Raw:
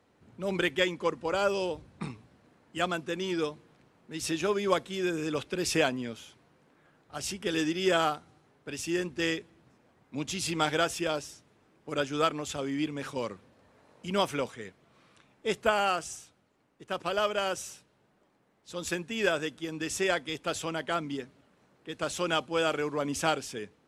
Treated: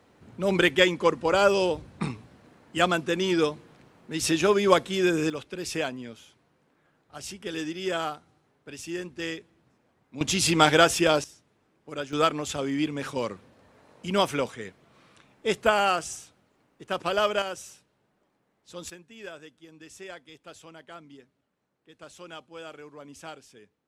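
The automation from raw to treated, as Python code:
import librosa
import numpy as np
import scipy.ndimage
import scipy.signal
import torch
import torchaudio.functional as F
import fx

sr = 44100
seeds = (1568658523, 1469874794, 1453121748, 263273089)

y = fx.gain(x, sr, db=fx.steps((0.0, 7.0), (5.3, -3.5), (10.21, 9.0), (11.24, -3.5), (12.13, 4.0), (17.42, -3.0), (18.9, -14.0)))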